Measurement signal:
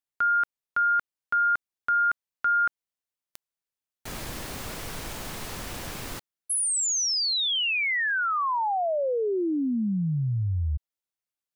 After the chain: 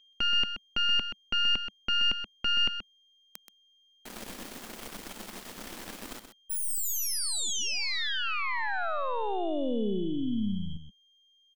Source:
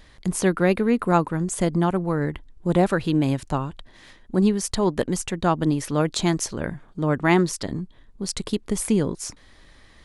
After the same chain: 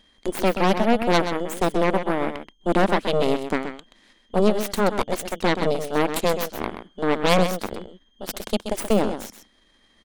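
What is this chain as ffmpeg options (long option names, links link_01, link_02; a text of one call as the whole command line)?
ffmpeg -i in.wav -filter_complex "[0:a]aeval=exprs='val(0)+0.00316*sin(2*PI*3200*n/s)':channel_layout=same,aeval=exprs='0.668*(cos(1*acos(clip(val(0)/0.668,-1,1)))-cos(1*PI/2))+0.168*(cos(3*acos(clip(val(0)/0.668,-1,1)))-cos(3*PI/2))+0.0531*(cos(7*acos(clip(val(0)/0.668,-1,1)))-cos(7*PI/2))+0.133*(cos(8*acos(clip(val(0)/0.668,-1,1)))-cos(8*PI/2))':channel_layout=same,lowshelf=frequency=170:width_type=q:width=3:gain=-6,asplit=2[link_01][link_02];[link_02]aecho=0:1:128:0.355[link_03];[link_01][link_03]amix=inputs=2:normalize=0,volume=1dB" out.wav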